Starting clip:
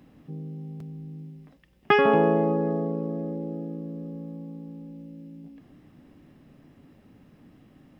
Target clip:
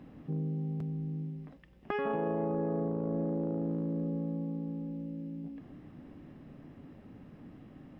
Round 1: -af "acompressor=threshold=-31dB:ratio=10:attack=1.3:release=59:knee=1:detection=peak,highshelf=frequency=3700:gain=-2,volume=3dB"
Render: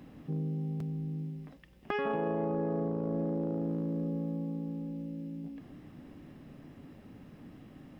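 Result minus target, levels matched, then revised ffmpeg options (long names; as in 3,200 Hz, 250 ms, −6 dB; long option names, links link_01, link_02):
4,000 Hz band +4.5 dB
-af "acompressor=threshold=-31dB:ratio=10:attack=1.3:release=59:knee=1:detection=peak,highshelf=frequency=3700:gain=-13,volume=3dB"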